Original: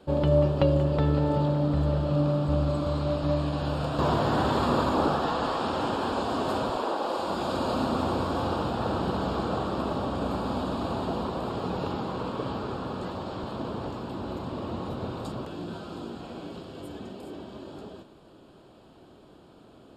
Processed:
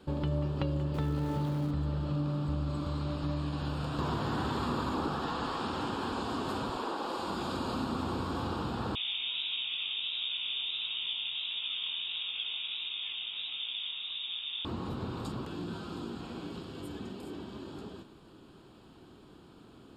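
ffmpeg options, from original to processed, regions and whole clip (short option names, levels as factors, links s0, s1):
-filter_complex "[0:a]asettb=1/sr,asplit=3[s0][s1][s2];[s0]atrim=end=0.944[s3];[s1]atrim=start=0.94:end=1.71,asetpts=PTS-STARTPTS,afade=t=in:d=0.004:c=qsin,afade=t=out:st=0.766:d=0.004:c=qsin,aeval=exprs='val(0)+0.5*0.0133*sgn(val(0))':c=same,highpass=50[s4];[s2]atrim=start=1.706[s5];[s3][s4]acrossfade=d=0.004:c1=hsin:c2=qsin[s6];[s6][s5]acrossfade=d=0.004:c1=qsin:c2=hsin,asettb=1/sr,asplit=3[s7][s8][s9];[s7]atrim=end=8.954[s10];[s8]atrim=start=8.95:end=14.65,asetpts=PTS-STARTPTS,afade=t=in:d=0.004:c=qsin,afade=t=out:st=5.696:d=0.004:c=qsin,lowpass=f=3200:t=q:w=0.5098,lowpass=f=3200:t=q:w=0.6013,lowpass=f=3200:t=q:w=0.9,lowpass=f=3200:t=q:w=2.563,afreqshift=-3800,flanger=delay=15.5:depth=7.3:speed=1.5[s11];[s9]atrim=start=14.646[s12];[s10][s11]acrossfade=d=0.004:c1=hsin:c2=qsin[s13];[s13][s12]acrossfade=d=0.004:c1=qsin:c2=hsin,equalizer=f=610:w=2.1:g=-10,acompressor=threshold=0.02:ratio=2"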